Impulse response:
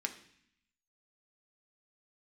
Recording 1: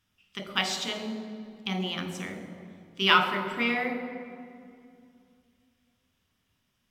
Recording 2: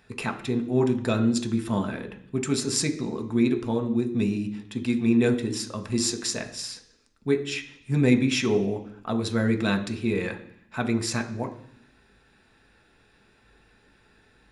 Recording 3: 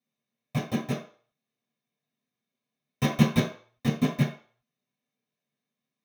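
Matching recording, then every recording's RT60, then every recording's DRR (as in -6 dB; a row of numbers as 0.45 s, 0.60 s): 2; 2.4 s, 0.60 s, 0.45 s; 4.0 dB, 4.5 dB, -7.5 dB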